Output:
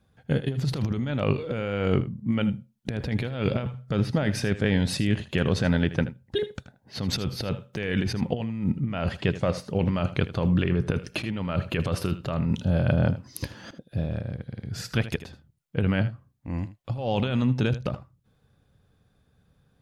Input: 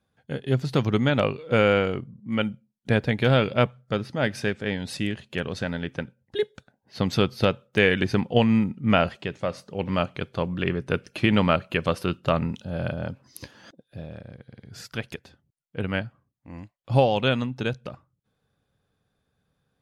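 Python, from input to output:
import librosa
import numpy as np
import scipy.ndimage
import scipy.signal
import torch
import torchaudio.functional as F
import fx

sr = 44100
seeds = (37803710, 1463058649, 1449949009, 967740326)

y = fx.low_shelf(x, sr, hz=190.0, db=9.0)
y = fx.over_compress(y, sr, threshold_db=-25.0, ratio=-1.0)
y = y + 10.0 ** (-14.5 / 20.0) * np.pad(y, (int(79 * sr / 1000.0), 0))[:len(y)]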